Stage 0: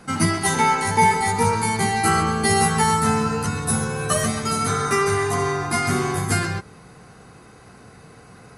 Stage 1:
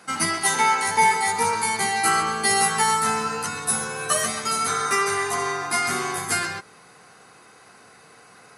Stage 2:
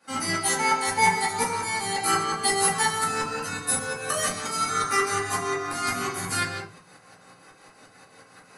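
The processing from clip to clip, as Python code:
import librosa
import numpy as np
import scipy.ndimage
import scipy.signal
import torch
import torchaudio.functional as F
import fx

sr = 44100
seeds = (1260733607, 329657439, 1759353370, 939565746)

y1 = fx.highpass(x, sr, hz=880.0, slope=6)
y1 = F.gain(torch.from_numpy(y1), 1.5).numpy()
y2 = fx.tremolo_shape(y1, sr, shape='saw_up', hz=5.6, depth_pct=85)
y2 = fx.room_shoebox(y2, sr, seeds[0], volume_m3=150.0, walls='furnished', distance_m=2.4)
y2 = F.gain(torch.from_numpy(y2), -3.0).numpy()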